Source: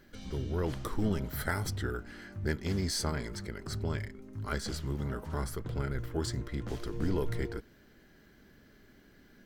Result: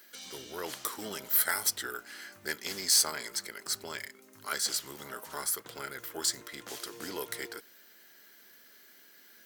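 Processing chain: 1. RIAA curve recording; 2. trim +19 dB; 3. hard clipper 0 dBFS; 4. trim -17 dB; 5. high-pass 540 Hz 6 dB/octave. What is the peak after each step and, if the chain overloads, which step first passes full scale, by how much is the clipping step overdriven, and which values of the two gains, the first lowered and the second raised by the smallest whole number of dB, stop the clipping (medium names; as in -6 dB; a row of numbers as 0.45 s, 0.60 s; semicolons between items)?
-10.0 dBFS, +9.0 dBFS, 0.0 dBFS, -17.0 dBFS, -16.0 dBFS; step 2, 9.0 dB; step 2 +10 dB, step 4 -8 dB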